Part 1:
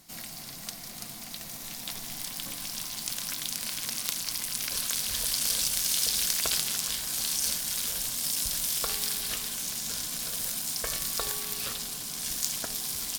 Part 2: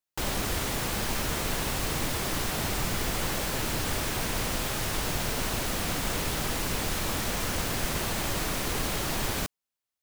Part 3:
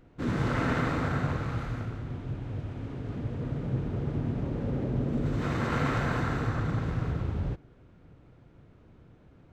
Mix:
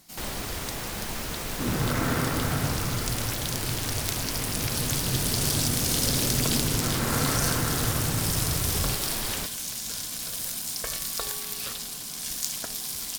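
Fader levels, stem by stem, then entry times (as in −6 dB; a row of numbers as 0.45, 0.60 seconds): 0.0, −4.0, +0.5 decibels; 0.00, 0.00, 1.40 seconds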